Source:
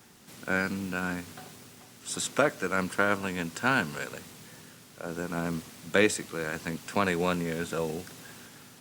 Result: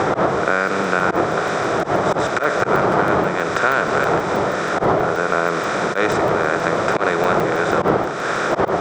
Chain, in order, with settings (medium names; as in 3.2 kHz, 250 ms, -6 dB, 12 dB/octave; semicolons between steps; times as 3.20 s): spectral levelling over time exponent 0.4; wind noise 590 Hz -19 dBFS; slow attack 112 ms; compression 4:1, threshold -24 dBFS, peak gain reduction 15.5 dB; cabinet simulation 150–5900 Hz, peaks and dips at 250 Hz -10 dB, 370 Hz +3 dB, 690 Hz +4 dB, 1.3 kHz +7 dB, 2.7 kHz -7 dB, 4.3 kHz -5 dB; crackling interface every 0.16 s, samples 64, zero, from 0.68 s; trim +8.5 dB